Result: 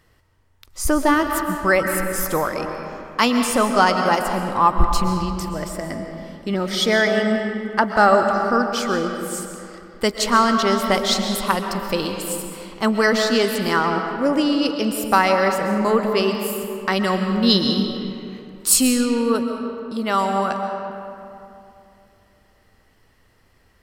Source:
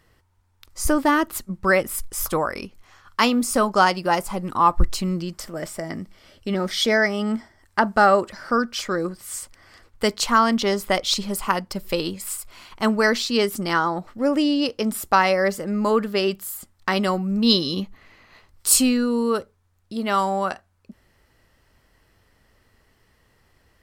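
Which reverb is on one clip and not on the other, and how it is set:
comb and all-pass reverb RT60 2.8 s, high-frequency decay 0.55×, pre-delay 90 ms, DRR 4.5 dB
level +1 dB

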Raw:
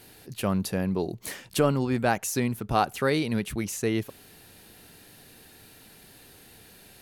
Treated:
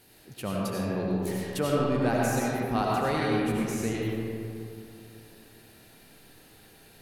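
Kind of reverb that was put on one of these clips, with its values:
comb and all-pass reverb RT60 2.7 s, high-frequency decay 0.4×, pre-delay 50 ms, DRR −4.5 dB
level −7 dB

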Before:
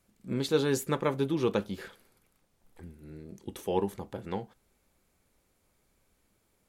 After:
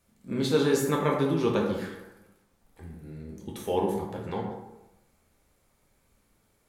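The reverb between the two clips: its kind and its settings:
dense smooth reverb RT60 1 s, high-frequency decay 0.5×, DRR −1.5 dB

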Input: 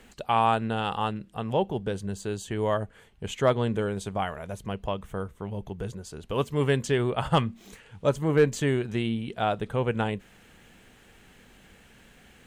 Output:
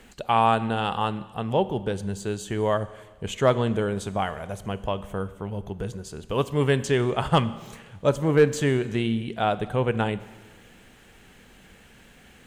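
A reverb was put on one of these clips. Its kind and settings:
four-comb reverb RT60 1.4 s, combs from 31 ms, DRR 15 dB
level +2.5 dB

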